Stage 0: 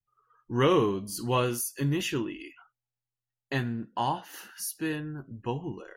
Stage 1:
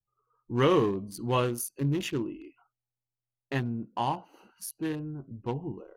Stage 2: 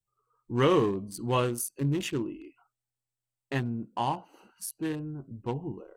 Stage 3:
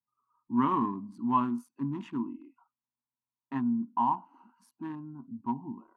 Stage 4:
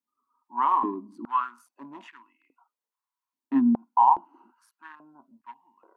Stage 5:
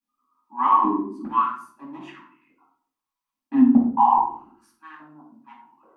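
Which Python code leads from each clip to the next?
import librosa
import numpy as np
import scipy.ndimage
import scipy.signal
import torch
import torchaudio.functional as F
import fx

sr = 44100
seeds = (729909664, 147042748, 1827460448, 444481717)

y1 = fx.wiener(x, sr, points=25)
y2 = fx.peak_eq(y1, sr, hz=8100.0, db=9.5, octaves=0.23)
y3 = fx.double_bandpass(y2, sr, hz=490.0, octaves=2.0)
y3 = F.gain(torch.from_numpy(y3), 8.0).numpy()
y4 = fx.filter_held_highpass(y3, sr, hz=2.4, low_hz=270.0, high_hz=1800.0)
y5 = fx.room_shoebox(y4, sr, seeds[0], volume_m3=570.0, walls='furnished', distance_m=8.5)
y5 = F.gain(torch.from_numpy(y5), -6.5).numpy()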